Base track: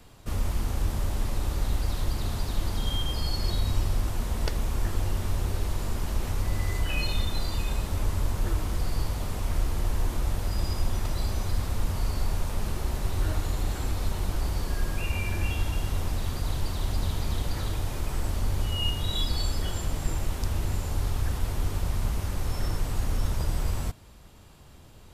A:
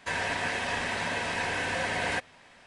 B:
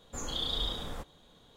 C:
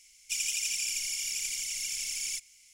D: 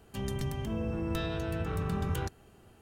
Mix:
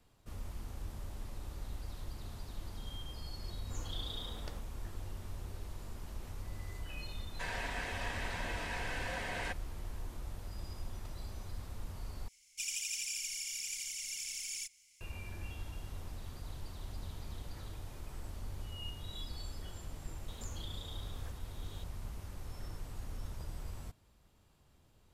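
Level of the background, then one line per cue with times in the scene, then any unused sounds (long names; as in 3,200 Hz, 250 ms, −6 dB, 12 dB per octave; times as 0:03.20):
base track −16 dB
0:03.57: mix in B −10.5 dB
0:07.33: mix in A −10 dB
0:12.28: overwrite with C −7 dB
0:20.28: mix in B −15.5 dB + multiband upward and downward compressor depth 100%
not used: D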